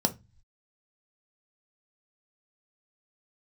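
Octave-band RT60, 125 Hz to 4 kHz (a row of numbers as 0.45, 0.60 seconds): 0.75, 0.40, 0.20, 0.20, 0.25, 0.30 seconds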